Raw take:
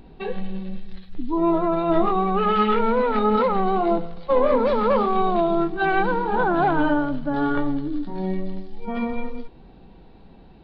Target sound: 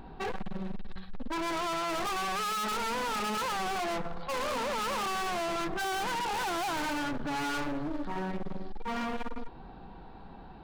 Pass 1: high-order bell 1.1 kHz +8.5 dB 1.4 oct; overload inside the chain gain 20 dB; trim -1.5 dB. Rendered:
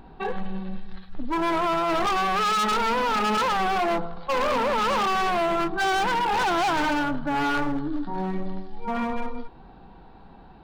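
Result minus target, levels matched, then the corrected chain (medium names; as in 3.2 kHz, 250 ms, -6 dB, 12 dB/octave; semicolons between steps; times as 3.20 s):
overload inside the chain: distortion -4 dB
high-order bell 1.1 kHz +8.5 dB 1.4 oct; overload inside the chain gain 30 dB; trim -1.5 dB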